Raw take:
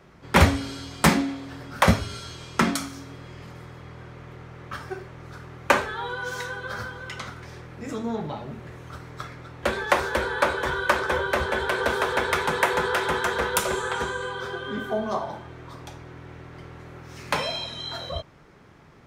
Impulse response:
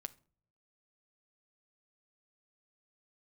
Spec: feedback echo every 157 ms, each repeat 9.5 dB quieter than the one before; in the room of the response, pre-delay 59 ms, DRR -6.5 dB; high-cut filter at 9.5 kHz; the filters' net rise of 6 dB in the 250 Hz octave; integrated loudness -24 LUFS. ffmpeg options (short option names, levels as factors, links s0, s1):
-filter_complex "[0:a]lowpass=9500,equalizer=f=250:t=o:g=7.5,aecho=1:1:157|314|471|628:0.335|0.111|0.0365|0.012,asplit=2[s0][s1];[1:a]atrim=start_sample=2205,adelay=59[s2];[s1][s2]afir=irnorm=-1:irlink=0,volume=3.16[s3];[s0][s3]amix=inputs=2:normalize=0,volume=0.422"